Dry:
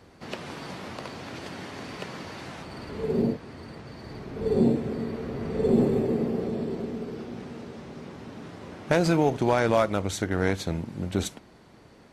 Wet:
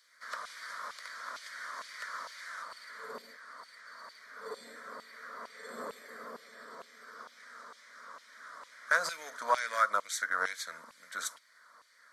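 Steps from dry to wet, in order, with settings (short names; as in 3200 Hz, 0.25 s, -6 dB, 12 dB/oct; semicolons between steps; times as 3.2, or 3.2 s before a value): fixed phaser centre 540 Hz, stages 8; LFO high-pass saw down 2.2 Hz 950–2900 Hz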